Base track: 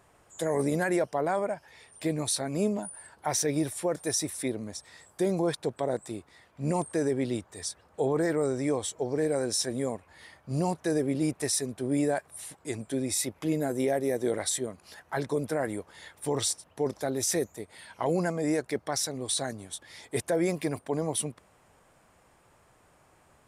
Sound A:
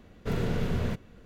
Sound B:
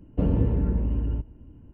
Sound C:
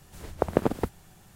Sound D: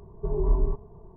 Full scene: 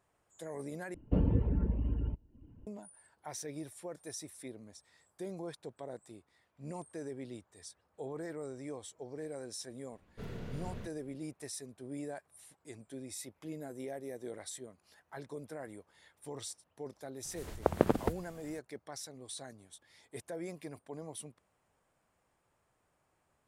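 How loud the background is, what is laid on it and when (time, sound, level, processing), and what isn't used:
base track −15 dB
0:00.94: overwrite with B −5 dB + reverb reduction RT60 0.7 s
0:09.92: mix in A −14.5 dB
0:17.24: mix in C −3.5 dB + mains-hum notches 60/120/180 Hz
not used: D

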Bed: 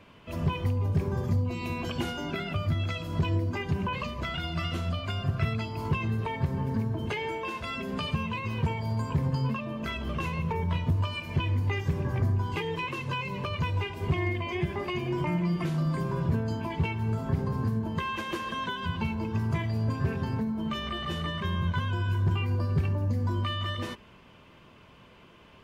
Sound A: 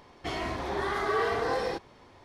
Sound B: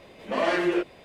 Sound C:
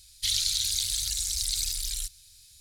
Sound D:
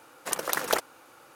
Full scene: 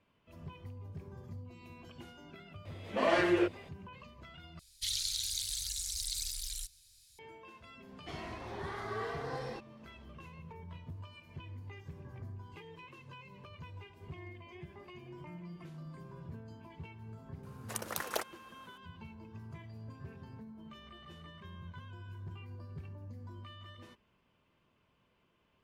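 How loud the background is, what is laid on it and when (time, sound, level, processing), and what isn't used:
bed −19.5 dB
0:02.65: mix in B −4 dB
0:04.59: overwrite with C −8.5 dB
0:07.82: mix in A −11.5 dB
0:17.43: mix in D −10 dB

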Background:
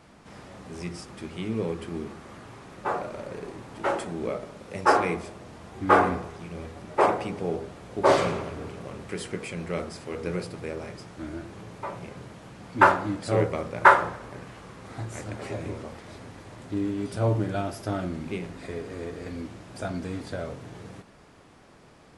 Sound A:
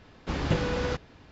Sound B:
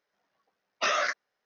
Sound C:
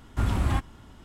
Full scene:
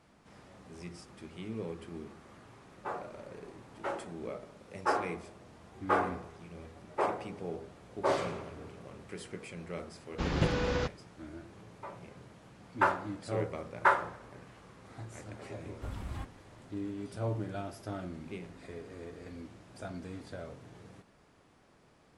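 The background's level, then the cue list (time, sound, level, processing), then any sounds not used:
background −10 dB
0:09.91: mix in A −2.5 dB + downward expander −44 dBFS
0:15.65: mix in C −15.5 dB
not used: B

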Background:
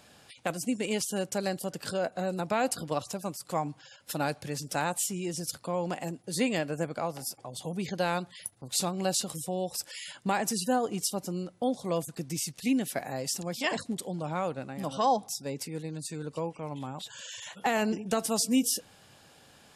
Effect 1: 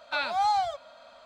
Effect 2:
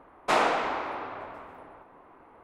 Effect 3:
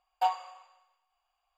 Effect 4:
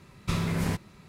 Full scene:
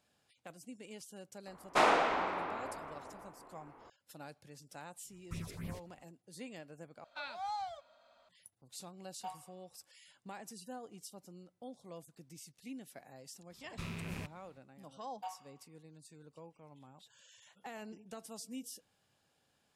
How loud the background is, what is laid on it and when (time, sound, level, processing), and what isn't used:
background −19.5 dB
0:01.47: mix in 2 −3.5 dB
0:05.03: mix in 4 −14.5 dB, fades 0.10 s + all-pass phaser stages 4, 3.6 Hz, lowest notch 150–1,300 Hz
0:07.04: overwrite with 1 −14.5 dB
0:09.02: mix in 3 −17.5 dB
0:13.50: mix in 4 −15 dB + loose part that buzzes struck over −31 dBFS, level −22 dBFS
0:15.01: mix in 3 −17 dB + notch filter 6,100 Hz

